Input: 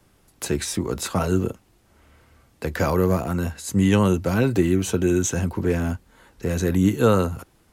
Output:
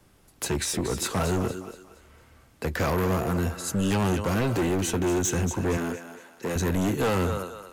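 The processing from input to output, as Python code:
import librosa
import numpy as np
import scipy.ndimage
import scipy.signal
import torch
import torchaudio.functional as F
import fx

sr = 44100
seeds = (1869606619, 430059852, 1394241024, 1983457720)

p1 = x + fx.echo_thinned(x, sr, ms=233, feedback_pct=38, hz=490.0, wet_db=-10.0, dry=0)
p2 = np.clip(10.0 ** (21.5 / 20.0) * p1, -1.0, 1.0) / 10.0 ** (21.5 / 20.0)
p3 = fx.spec_repair(p2, sr, seeds[0], start_s=3.62, length_s=0.26, low_hz=640.0, high_hz=2500.0, source='before')
y = fx.highpass(p3, sr, hz=220.0, slope=12, at=(5.77, 6.56))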